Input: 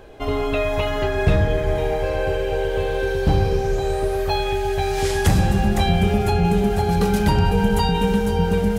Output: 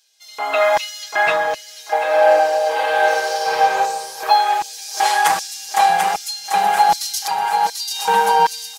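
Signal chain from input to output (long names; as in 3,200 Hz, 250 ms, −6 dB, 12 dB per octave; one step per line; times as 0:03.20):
0:07.27–0:07.91: tuned comb filter 140 Hz, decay 1.6 s, mix 80%
auto-filter high-pass square 1.3 Hz 940–5,300 Hz
comb filter 6.2 ms, depth 92%
feedback echo with a high-pass in the loop 740 ms, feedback 39%, high-pass 420 Hz, level −6.5 dB
0:00.59–0:01.32: dynamic equaliser 1,900 Hz, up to +5 dB, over −34 dBFS, Q 0.83
0:02.05–0:03.59: thrown reverb, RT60 1.9 s, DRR −4.5 dB
automatic gain control gain up to 11.5 dB
level −2 dB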